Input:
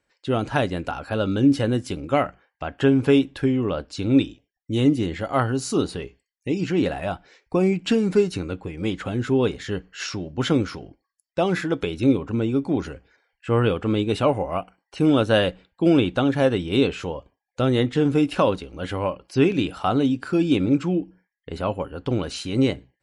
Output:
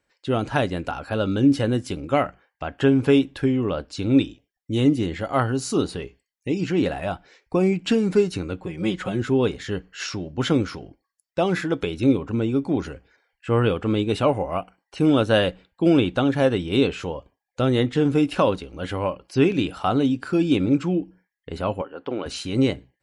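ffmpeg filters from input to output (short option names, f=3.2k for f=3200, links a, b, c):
-filter_complex "[0:a]asettb=1/sr,asplit=3[a][b][c];[a]atrim=end=8.614[d];[b]atrim=start=8.61:end=9.22,asetpts=PTS-STARTPTS,afade=t=in:d=0.004:c=qsin,afade=t=out:st=0.606:d=0.004:c=qsin,aecho=1:1:5.5:0.65,atrim=end_sample=26901[e];[c]atrim=start=9.216[f];[d][e]acrossfade=d=0.004:c1=hsin:c2=qsin[g];[g][f]acrossfade=d=0.004:c1=qsin:c2=hsin,asettb=1/sr,asplit=3[h][i][j];[h]atrim=end=21.814[k];[i]atrim=start=21.81:end=22.26,asetpts=PTS-STARTPTS,afade=t=in:d=0.004:c=qsin,afade=t=out:st=0.446:d=0.004:c=qsin,highpass=330,lowpass=2.8k[l];[j]atrim=start=22.256[m];[k][l]acrossfade=d=0.004:c1=hsin:c2=qsin[n];[n][m]acrossfade=d=0.004:c1=qsin:c2=hsin"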